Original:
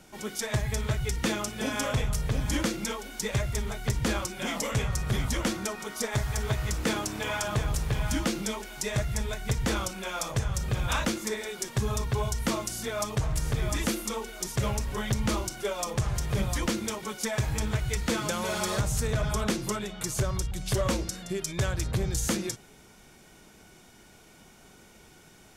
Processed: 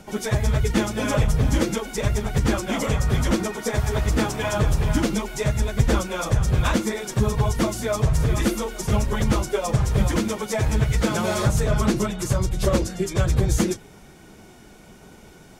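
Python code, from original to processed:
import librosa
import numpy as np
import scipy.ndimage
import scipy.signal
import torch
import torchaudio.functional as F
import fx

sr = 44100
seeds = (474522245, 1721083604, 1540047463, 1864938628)

y = fx.stretch_vocoder_free(x, sr, factor=0.61)
y = fx.tilt_shelf(y, sr, db=3.5, hz=1200.0)
y = y * 10.0 ** (9.0 / 20.0)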